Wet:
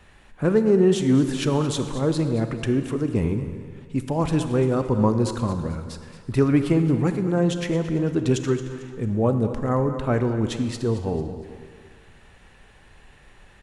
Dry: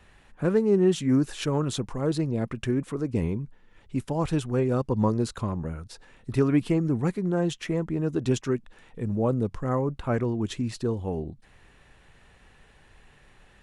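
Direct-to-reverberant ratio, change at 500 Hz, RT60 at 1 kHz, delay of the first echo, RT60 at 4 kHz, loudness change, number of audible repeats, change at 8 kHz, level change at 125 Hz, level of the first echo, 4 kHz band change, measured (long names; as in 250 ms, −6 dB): 7.5 dB, +4.0 dB, 1.9 s, 223 ms, 1.6 s, +4.0 dB, 3, +4.0 dB, +4.5 dB, −14.0 dB, +4.0 dB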